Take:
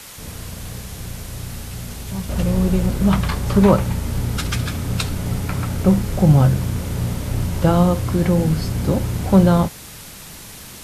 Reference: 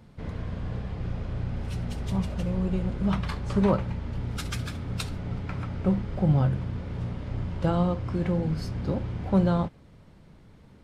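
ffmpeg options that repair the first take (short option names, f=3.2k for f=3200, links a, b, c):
-af "afwtdn=0.014,asetnsamples=n=441:p=0,asendcmd='2.29 volume volume -9.5dB',volume=0dB"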